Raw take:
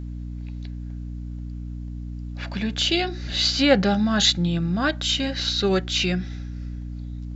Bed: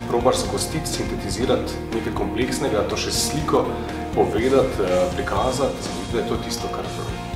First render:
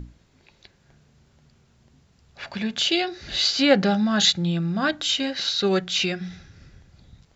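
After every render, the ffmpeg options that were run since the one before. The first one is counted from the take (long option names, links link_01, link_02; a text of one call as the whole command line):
ffmpeg -i in.wav -af "bandreject=frequency=60:width_type=h:width=6,bandreject=frequency=120:width_type=h:width=6,bandreject=frequency=180:width_type=h:width=6,bandreject=frequency=240:width_type=h:width=6,bandreject=frequency=300:width_type=h:width=6" out.wav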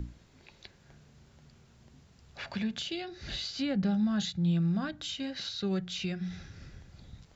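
ffmpeg -i in.wav -filter_complex "[0:a]acrossover=split=190[link_01][link_02];[link_02]acompressor=threshold=-39dB:ratio=4[link_03];[link_01][link_03]amix=inputs=2:normalize=0" out.wav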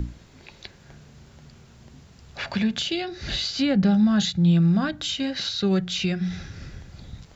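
ffmpeg -i in.wav -af "volume=9.5dB" out.wav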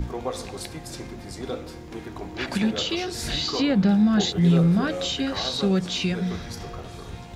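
ffmpeg -i in.wav -i bed.wav -filter_complex "[1:a]volume=-12dB[link_01];[0:a][link_01]amix=inputs=2:normalize=0" out.wav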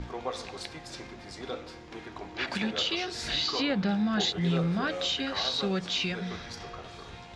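ffmpeg -i in.wav -af "lowpass=5100,lowshelf=frequency=480:gain=-11" out.wav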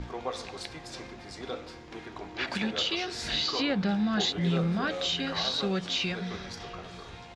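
ffmpeg -i in.wav -filter_complex "[0:a]asplit=2[link_01][link_02];[link_02]adelay=699.7,volume=-17dB,highshelf=frequency=4000:gain=-15.7[link_03];[link_01][link_03]amix=inputs=2:normalize=0" out.wav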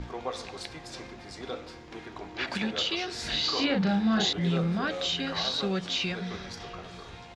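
ffmpeg -i in.wav -filter_complex "[0:a]asettb=1/sr,asplit=3[link_01][link_02][link_03];[link_01]atrim=end=3.404[link_04];[link_02]atrim=start=3.4:end=4.33,asetpts=PTS-STARTPTS,afade=type=in:duration=0.004:curve=qsin,afade=type=out:start_time=0.926:duration=0.004:curve=qsin,asplit=2[link_05][link_06];[link_06]adelay=36,volume=-3dB[link_07];[link_05][link_07]amix=inputs=2:normalize=0,atrim=end_sample=41013[link_08];[link_03]atrim=start=4.326[link_09];[link_04][link_08]acrossfade=duration=0.004:curve1=hsin:curve2=qsin[link_10];[link_10][link_09]acrossfade=duration=0.004:curve1=qsin:curve2=hsin" out.wav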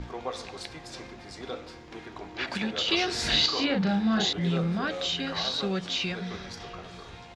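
ffmpeg -i in.wav -filter_complex "[0:a]asplit=3[link_01][link_02][link_03];[link_01]atrim=end=2.882[link_04];[link_02]atrim=start=2.878:end=3.462,asetpts=PTS-STARTPTS,volume=6dB[link_05];[link_03]atrim=start=3.458[link_06];[link_04][link_05]acrossfade=duration=0.004:curve1=hsin:curve2=hsin[link_07];[link_07][link_06]acrossfade=duration=0.004:curve1=hsin:curve2=hsin" out.wav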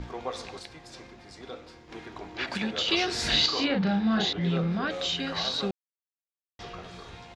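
ffmpeg -i in.wav -filter_complex "[0:a]asettb=1/sr,asplit=3[link_01][link_02][link_03];[link_01]atrim=end=3.684[link_04];[link_02]atrim=start=3.68:end=4.9,asetpts=PTS-STARTPTS,afade=type=in:duration=0.004:curve=qsin,afade=type=out:start_time=1.216:duration=0.004:curve=qsin,lowpass=4900[link_05];[link_03]atrim=start=4.896[link_06];[link_04][link_05]acrossfade=duration=0.004:curve1=hsin:curve2=qsin[link_07];[link_07][link_06]acrossfade=duration=0.004:curve1=qsin:curve2=hsin,asplit=5[link_08][link_09][link_10][link_11][link_12];[link_08]atrim=end=0.592[link_13];[link_09]atrim=start=0.588:end=1.892,asetpts=PTS-STARTPTS,volume=-4.5dB[link_14];[link_10]atrim=start=1.888:end=5.71,asetpts=PTS-STARTPTS,afade=type=out:start_time=3.818:duration=0.004:curve=hsin[link_15];[link_11]atrim=start=5.71:end=6.59,asetpts=PTS-STARTPTS,volume=0[link_16];[link_12]atrim=start=6.59,asetpts=PTS-STARTPTS,afade=type=in:duration=0.004:curve=hsin[link_17];[link_13][link_14]acrossfade=duration=0.004:curve1=hsin:curve2=hsin[link_18];[link_15][link_16][link_17]concat=n=3:v=0:a=1[link_19];[link_18][link_19]acrossfade=duration=0.004:curve1=hsin:curve2=hsin" out.wav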